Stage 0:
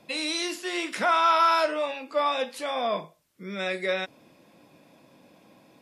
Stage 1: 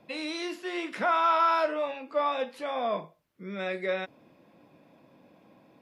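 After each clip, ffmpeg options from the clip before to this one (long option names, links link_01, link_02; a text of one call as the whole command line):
ffmpeg -i in.wav -af "equalizer=frequency=8600:width=0.44:gain=-13.5,volume=-1.5dB" out.wav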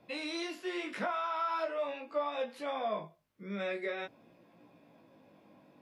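ffmpeg -i in.wav -af "acompressor=threshold=-28dB:ratio=6,flanger=delay=17:depth=2.9:speed=0.44" out.wav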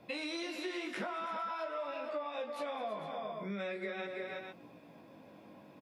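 ffmpeg -i in.wav -filter_complex "[0:a]asplit=2[link_01][link_02];[link_02]aecho=0:1:213|330|454:0.188|0.355|0.237[link_03];[link_01][link_03]amix=inputs=2:normalize=0,acompressor=threshold=-41dB:ratio=6,volume=4.5dB" out.wav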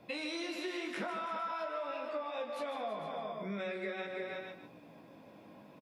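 ffmpeg -i in.wav -af "aecho=1:1:151:0.335" out.wav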